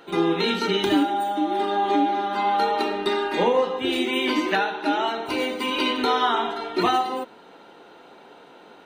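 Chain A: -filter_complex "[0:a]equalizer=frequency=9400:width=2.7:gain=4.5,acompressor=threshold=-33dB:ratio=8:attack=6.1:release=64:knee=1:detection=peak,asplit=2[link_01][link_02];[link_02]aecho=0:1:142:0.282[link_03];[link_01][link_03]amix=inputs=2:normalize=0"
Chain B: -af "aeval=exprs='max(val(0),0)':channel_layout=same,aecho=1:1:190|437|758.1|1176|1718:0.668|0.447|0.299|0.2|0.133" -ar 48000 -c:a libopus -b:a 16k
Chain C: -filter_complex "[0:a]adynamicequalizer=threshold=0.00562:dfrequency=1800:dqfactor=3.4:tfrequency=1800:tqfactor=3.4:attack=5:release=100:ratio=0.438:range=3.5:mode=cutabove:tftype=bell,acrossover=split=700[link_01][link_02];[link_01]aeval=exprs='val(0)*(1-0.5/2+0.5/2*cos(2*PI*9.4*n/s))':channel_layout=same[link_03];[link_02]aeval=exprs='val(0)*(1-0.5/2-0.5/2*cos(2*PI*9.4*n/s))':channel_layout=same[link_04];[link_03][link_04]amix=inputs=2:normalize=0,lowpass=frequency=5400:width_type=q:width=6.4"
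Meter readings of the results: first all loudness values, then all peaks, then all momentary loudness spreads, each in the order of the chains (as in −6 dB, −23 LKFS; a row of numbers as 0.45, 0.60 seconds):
−34.0, −25.5, −24.5 LKFS; −22.0, −7.5, −9.0 dBFS; 14, 12, 4 LU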